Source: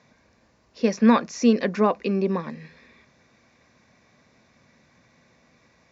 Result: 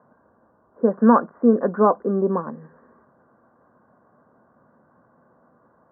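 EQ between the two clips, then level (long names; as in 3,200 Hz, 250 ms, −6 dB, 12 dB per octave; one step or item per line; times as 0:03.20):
high-pass filter 290 Hz 6 dB per octave
Butterworth low-pass 1,500 Hz 72 dB per octave
+5.5 dB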